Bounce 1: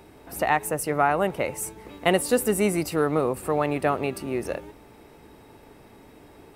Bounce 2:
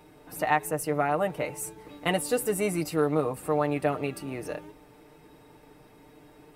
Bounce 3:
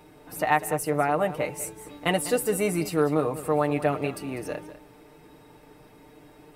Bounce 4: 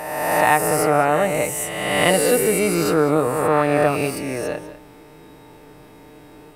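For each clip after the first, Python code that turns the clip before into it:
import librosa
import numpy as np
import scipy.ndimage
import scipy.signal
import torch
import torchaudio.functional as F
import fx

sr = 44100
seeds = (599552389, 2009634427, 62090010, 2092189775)

y1 = x + 0.65 * np.pad(x, (int(6.6 * sr / 1000.0), 0))[:len(x)]
y1 = y1 * librosa.db_to_amplitude(-5.5)
y2 = y1 + 10.0 ** (-14.5 / 20.0) * np.pad(y1, (int(198 * sr / 1000.0), 0))[:len(y1)]
y2 = y2 * librosa.db_to_amplitude(2.0)
y3 = fx.spec_swells(y2, sr, rise_s=1.52)
y3 = y3 * librosa.db_to_amplitude(4.0)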